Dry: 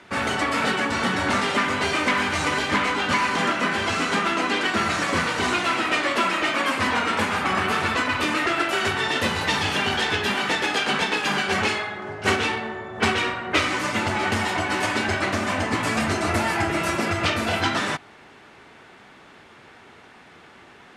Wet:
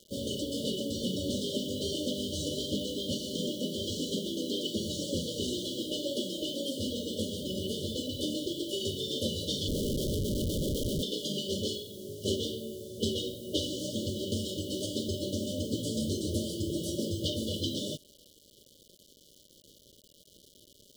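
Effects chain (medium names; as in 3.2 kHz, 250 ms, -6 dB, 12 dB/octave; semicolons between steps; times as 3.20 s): 9.68–11.03 s: Schmitt trigger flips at -20.5 dBFS; bit crusher 7-bit; FFT band-reject 620–2900 Hz; trim -6 dB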